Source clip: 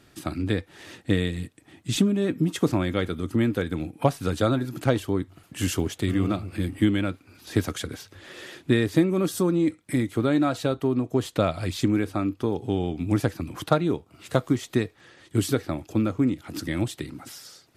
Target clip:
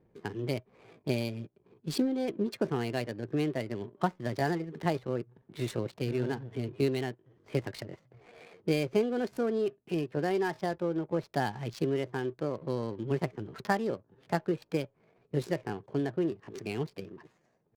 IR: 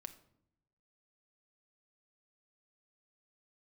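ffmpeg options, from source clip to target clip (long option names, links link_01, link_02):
-af "adynamicsmooth=sensitivity=7.5:basefreq=510,asetrate=57191,aresample=44100,atempo=0.771105,volume=-7.5dB"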